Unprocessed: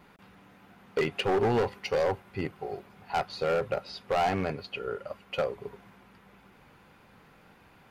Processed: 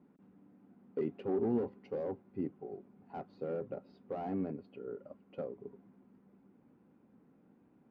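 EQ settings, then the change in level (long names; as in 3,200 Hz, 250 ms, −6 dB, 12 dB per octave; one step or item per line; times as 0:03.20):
resonant band-pass 260 Hz, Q 2.6
+1.0 dB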